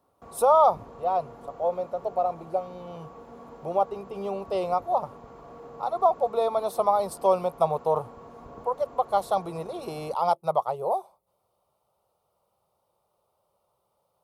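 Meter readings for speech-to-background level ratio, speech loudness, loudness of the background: 20.0 dB, −26.5 LKFS, −46.5 LKFS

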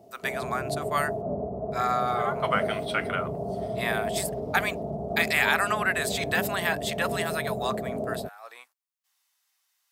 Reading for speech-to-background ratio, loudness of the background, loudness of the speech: 4.0 dB, −32.5 LKFS, −28.5 LKFS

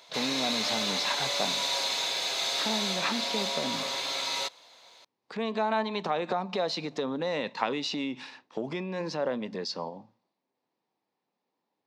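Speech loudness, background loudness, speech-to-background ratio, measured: −33.0 LKFS, −28.5 LKFS, −4.5 dB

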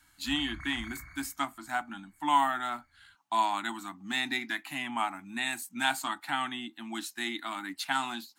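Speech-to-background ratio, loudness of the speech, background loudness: 13.0 dB, −32.5 LKFS, −45.5 LKFS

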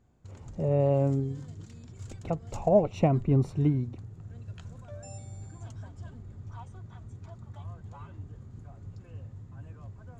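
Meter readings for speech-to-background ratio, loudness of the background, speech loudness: 18.0 dB, −45.0 LKFS, −27.0 LKFS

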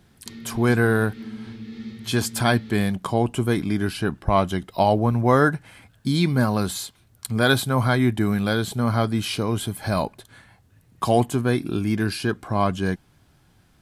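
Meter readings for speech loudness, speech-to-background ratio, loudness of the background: −22.5 LKFS, 15.5 dB, −38.0 LKFS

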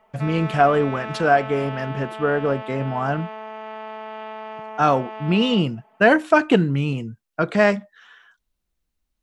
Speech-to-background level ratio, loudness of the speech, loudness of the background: 13.0 dB, −21.0 LKFS, −34.0 LKFS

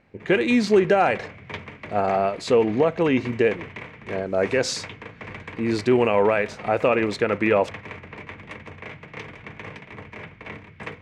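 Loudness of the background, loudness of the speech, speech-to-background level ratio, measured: −38.5 LKFS, −22.0 LKFS, 16.5 dB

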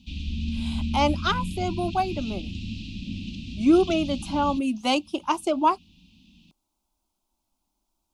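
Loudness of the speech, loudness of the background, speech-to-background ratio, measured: −25.0 LKFS, −33.0 LKFS, 8.0 dB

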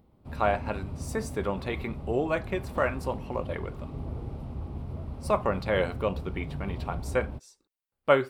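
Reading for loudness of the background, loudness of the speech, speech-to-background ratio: −38.5 LKFS, −31.0 LKFS, 7.5 dB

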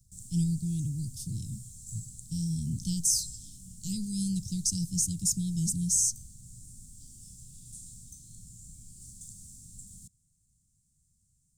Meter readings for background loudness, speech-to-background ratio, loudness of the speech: −47.0 LKFS, 17.5 dB, −29.5 LKFS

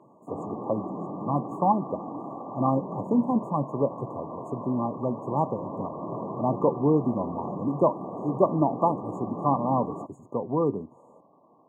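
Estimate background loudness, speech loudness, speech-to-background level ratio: −36.5 LKFS, −27.5 LKFS, 9.0 dB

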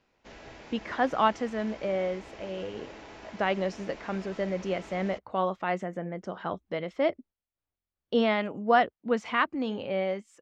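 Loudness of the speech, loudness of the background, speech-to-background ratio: −30.0 LKFS, −47.0 LKFS, 17.0 dB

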